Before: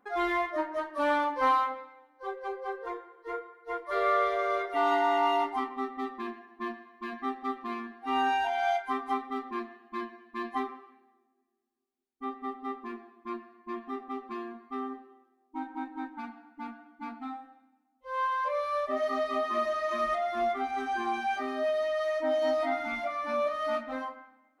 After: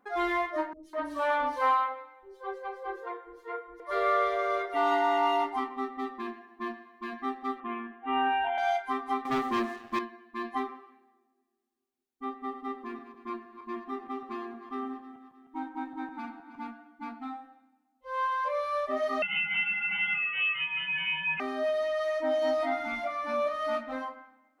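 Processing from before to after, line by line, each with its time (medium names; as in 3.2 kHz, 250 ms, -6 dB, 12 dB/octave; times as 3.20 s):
0.73–3.80 s: three bands offset in time lows, highs, mids 100/200 ms, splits 320/4400 Hz
7.60–8.58 s: steep low-pass 3.3 kHz 72 dB/octave
9.25–9.99 s: waveshaping leveller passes 3
12.37–16.67 s: backward echo that repeats 155 ms, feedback 61%, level -11.5 dB
19.22–21.40 s: frequency inversion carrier 3.3 kHz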